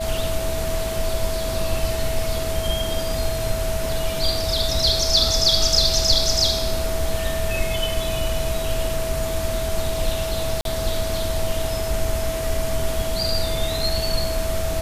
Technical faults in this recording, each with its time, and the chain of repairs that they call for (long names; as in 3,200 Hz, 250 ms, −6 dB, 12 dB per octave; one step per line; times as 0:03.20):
whistle 650 Hz −26 dBFS
0:10.61–0:10.65: drop-out 42 ms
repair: notch filter 650 Hz, Q 30
repair the gap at 0:10.61, 42 ms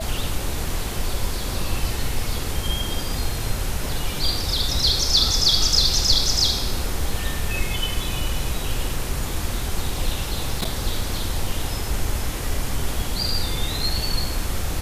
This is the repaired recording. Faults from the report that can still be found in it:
none of them is left